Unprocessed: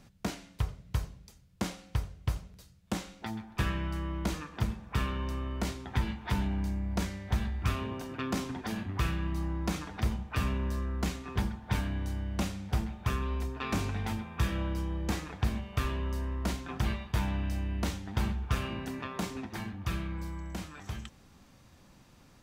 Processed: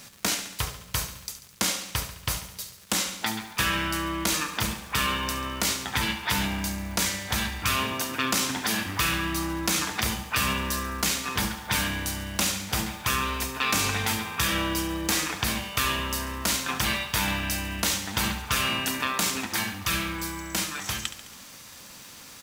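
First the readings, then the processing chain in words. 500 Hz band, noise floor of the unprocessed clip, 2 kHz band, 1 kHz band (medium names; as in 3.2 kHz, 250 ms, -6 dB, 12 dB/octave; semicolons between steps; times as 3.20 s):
+5.0 dB, -59 dBFS, +13.5 dB, +10.0 dB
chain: tilt EQ +3.5 dB/octave; band-stop 380 Hz, Q 12; in parallel at -2.5 dB: compressor with a negative ratio -38 dBFS; on the sum: crackle 260 per s -43 dBFS; peaking EQ 720 Hz -3.5 dB 0.32 oct; short-mantissa float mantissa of 4-bit; on a send: feedback delay 70 ms, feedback 58%, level -12 dB; on the sum: trim +6 dB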